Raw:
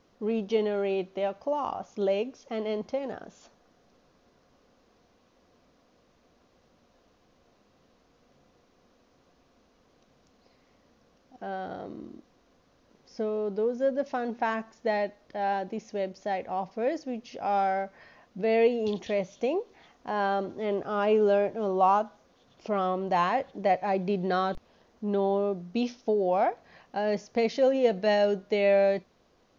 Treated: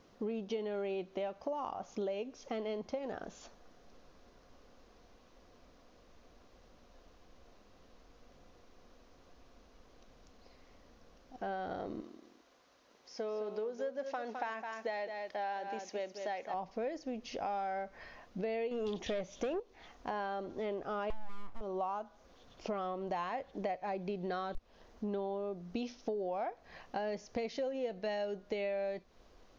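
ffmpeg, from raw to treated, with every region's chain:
-filter_complex "[0:a]asettb=1/sr,asplit=3[a][b][c];[a]atrim=end=12.014[d];[b]atrim=start=12.01:end=16.54,asetpts=PTS-STARTPTS,afade=t=in:d=0.004:c=qsin,afade=t=out:st=4.526:d=0.004:c=qsin,highpass=f=660:p=1,aecho=1:1:210:0.316,atrim=end_sample=199773[e];[c]atrim=start=16.536[f];[d][e]acrossfade=d=0.004:c1=hsin:c2=qsin[g];[g][f]acrossfade=d=0.004:c1=qsin:c2=hsin,asettb=1/sr,asplit=3[h][i][j];[h]atrim=end=18.714[k];[i]atrim=start=18.71:end=19.6,asetpts=PTS-STARTPTS,afade=t=in:d=0.004:c=qsin,afade=t=out:st=0.886:d=0.004:c=qsin,bandreject=f=4.3k:w=16,aeval=exprs='0.133*sin(PI/2*1.41*val(0)/0.133)':c=same[l];[j]atrim=start=19.596[m];[k][l]acrossfade=d=0.004:c1=hsin:c2=qsin[n];[n][m]acrossfade=d=0.004:c1=qsin:c2=hsin,asettb=1/sr,asplit=3[o][p][q];[o]atrim=end=21.104[r];[p]atrim=start=21.1:end=21.61,asetpts=PTS-STARTPTS,afade=t=in:d=0.004:c=qsin,afade=t=out:st=0.506:d=0.004:c=qsin,acompressor=threshold=-28dB:ratio=2.5:attack=3.2:release=140:knee=1:detection=peak,aeval=exprs='abs(val(0))':c=same[s];[q]atrim=start=21.606[t];[r][s]acrossfade=d=0.004:c1=hsin:c2=qsin[u];[u][t]acrossfade=d=0.004:c1=qsin:c2=hsin,asubboost=boost=5:cutoff=54,acompressor=threshold=-37dB:ratio=6,volume=1.5dB"

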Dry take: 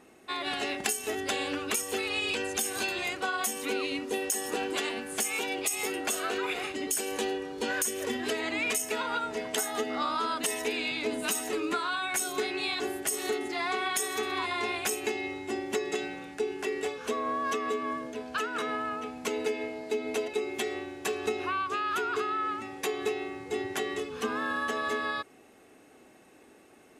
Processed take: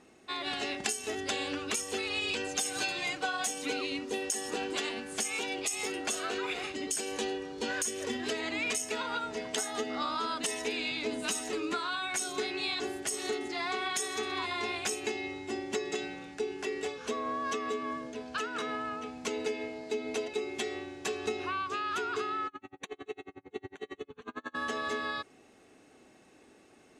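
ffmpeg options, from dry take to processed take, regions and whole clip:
-filter_complex "[0:a]asettb=1/sr,asplit=3[a][b][c];[a]atrim=end=2.464[d];[b]atrim=start=2.46:end=3.81,asetpts=PTS-STARTPTS,afade=t=in:d=0.004:c=qsin,afade=t=out:st=1.346:d=0.004:c=qsin,aecho=1:1:6.6:0.65,atrim=end_sample=59535,aeval=exprs='sgn(val(0))*max(abs(val(0))-0.00211,0)':c=same[e];[c]atrim=start=3.806[f];[d][e]acrossfade=d=0.004:c1=hsin:c2=qsin[g];[g][f]acrossfade=d=0.004:c1=qsin:c2=hsin,asettb=1/sr,asplit=3[h][i][j];[h]atrim=end=22.474[k];[i]atrim=start=22.47:end=24.55,asetpts=PTS-STARTPTS,afade=t=in:d=0.004:c=qsin,afade=t=out:st=2.076:d=0.004:c=qsin,adynamicsmooth=sensitivity=7.5:basefreq=2.3k,asuperstop=centerf=5100:order=8:qfactor=4.1,aeval=exprs='val(0)*pow(10,-38*(0.5-0.5*cos(2*PI*11*n/s))/20)':c=same[l];[j]atrim=start=24.546[m];[k][l]acrossfade=d=0.004:c1=hsin:c2=qsin[n];[n][m]acrossfade=d=0.004:c1=qsin:c2=hsin,lowpass=5.9k,bass=f=250:g=3,treble=f=4k:g=8,volume=-3.5dB"

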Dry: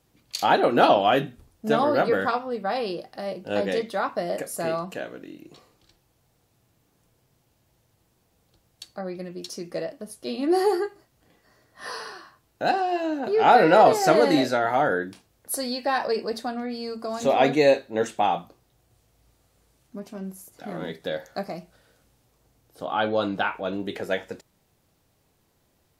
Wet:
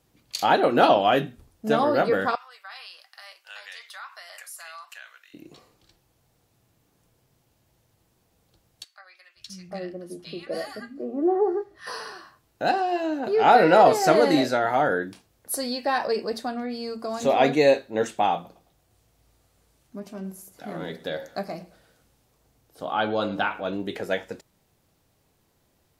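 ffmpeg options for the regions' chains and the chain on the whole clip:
-filter_complex "[0:a]asettb=1/sr,asplit=3[a][b][c];[a]atrim=end=2.354[d];[b]atrim=start=2.35:end=5.34,asetpts=PTS-STARTPTS,afade=t=in:d=0.004:c=qsin,afade=t=out:st=2.986:d=0.004:c=qsin,highpass=f=1.2k:w=0.5412,highpass=f=1.2k:w=1.3066,acompressor=threshold=-39dB:ratio=2.5:attack=3.2:release=140:knee=1:detection=peak[e];[c]atrim=start=5.336[f];[d][e]acrossfade=d=0.004:c1=hsin:c2=qsin[g];[g][f]acrossfade=d=0.004:c1=qsin:c2=hsin,asettb=1/sr,asplit=3[h][i][j];[h]atrim=end=8.844[k];[i]atrim=start=8.84:end=11.87,asetpts=PTS-STARTPTS,afade=t=in:d=0.004:c=qsin,afade=t=out:st=3.026:d=0.004:c=qsin,aemphasis=mode=reproduction:type=cd,bandreject=f=930:w=6.1,acrossover=split=190|1200[l][m][n];[l]adelay=520[o];[m]adelay=750[p];[o][p][n]amix=inputs=3:normalize=0,atrim=end_sample=133623[q];[j]atrim=start=11.866[r];[k][q]acrossfade=d=0.004:c1=hsin:c2=qsin[s];[s][r]acrossfade=d=0.004:c1=qsin:c2=hsin,asettb=1/sr,asplit=3[t][u][v];[t]atrim=end=18.344[w];[u]atrim=start=18.34:end=23.69,asetpts=PTS-STARTPTS,afade=t=in:d=0.004:c=qsin,afade=t=out:st=5.346:d=0.004:c=qsin,bandreject=f=60:t=h:w=6,bandreject=f=120:t=h:w=6,bandreject=f=180:t=h:w=6,bandreject=f=240:t=h:w=6,bandreject=f=300:t=h:w=6,bandreject=f=360:t=h:w=6,bandreject=f=420:t=h:w=6,bandreject=f=480:t=h:w=6,bandreject=f=540:t=h:w=6,aecho=1:1:108|216|324:0.112|0.0404|0.0145,atrim=end_sample=235935[x];[v]atrim=start=23.686[y];[w][x]acrossfade=d=0.004:c1=hsin:c2=qsin[z];[z][y]acrossfade=d=0.004:c1=qsin:c2=hsin"

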